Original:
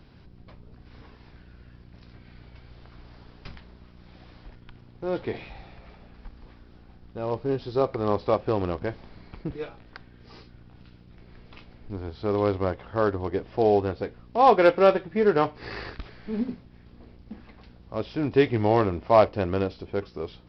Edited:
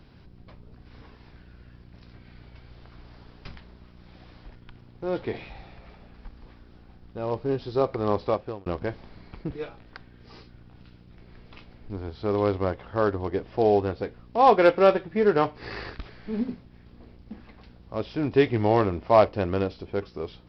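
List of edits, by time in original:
8.23–8.66 fade out

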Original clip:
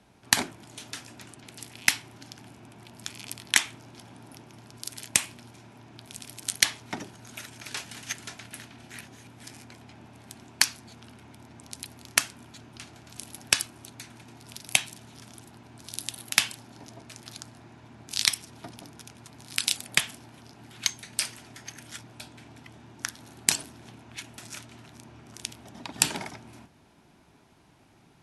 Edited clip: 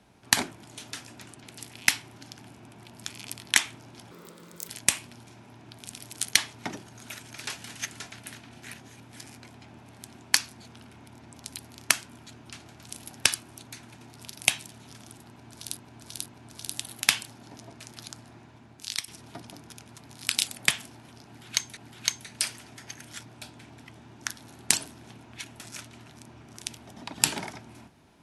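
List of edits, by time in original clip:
4.11–4.96 speed 147%
15.55–16.04 loop, 3 plays
17.65–18.37 fade out linear, to -12 dB
20.55–21.06 loop, 2 plays

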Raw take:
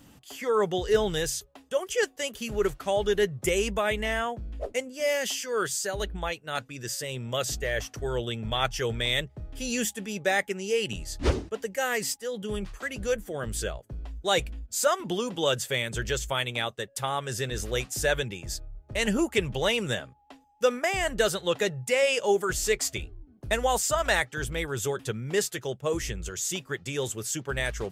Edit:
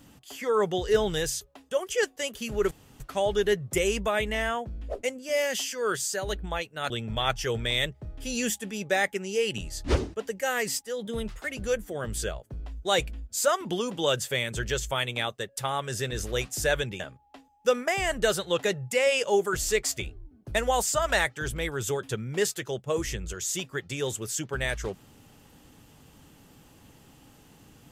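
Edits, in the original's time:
2.71 insert room tone 0.29 s
6.61–8.25 cut
12.4–12.9 speed 109%
18.39–19.96 cut

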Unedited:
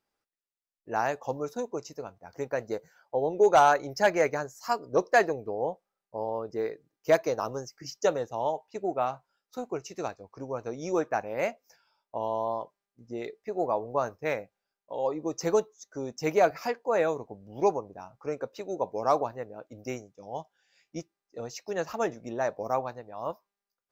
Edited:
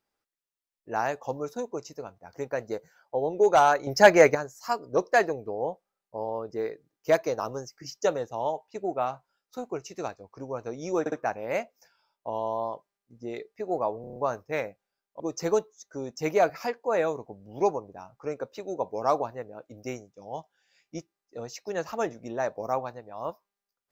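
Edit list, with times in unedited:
3.87–4.35 gain +8 dB
11 stutter 0.06 s, 3 plays
13.89 stutter 0.03 s, 6 plays
14.93–15.21 cut

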